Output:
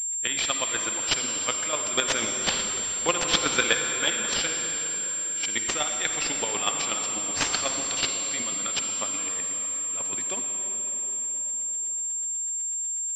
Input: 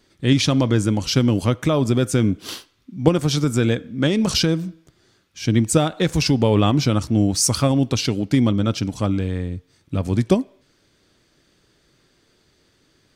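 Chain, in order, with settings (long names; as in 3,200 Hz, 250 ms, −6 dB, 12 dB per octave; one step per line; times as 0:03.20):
high-pass filter 1,500 Hz 6 dB per octave
spectral tilt +3.5 dB per octave
0:01.93–0:04.08: leveller curve on the samples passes 2
hard clipping −10 dBFS, distortion −11 dB
square-wave tremolo 8.1 Hz, depth 65%, duty 20%
convolution reverb RT60 5.2 s, pre-delay 43 ms, DRR 3.5 dB
switching amplifier with a slow clock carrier 7,400 Hz
level +2.5 dB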